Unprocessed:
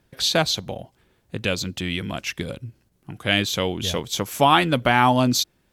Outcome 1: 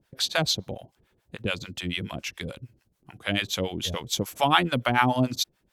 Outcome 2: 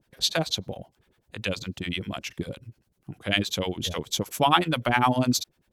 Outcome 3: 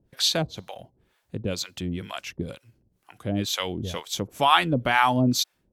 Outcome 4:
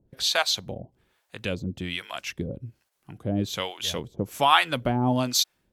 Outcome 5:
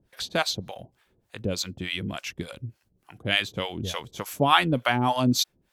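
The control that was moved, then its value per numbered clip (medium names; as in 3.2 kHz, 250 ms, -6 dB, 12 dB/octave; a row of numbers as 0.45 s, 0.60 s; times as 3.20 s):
harmonic tremolo, rate: 6.9 Hz, 10 Hz, 2.1 Hz, 1.2 Hz, 3.4 Hz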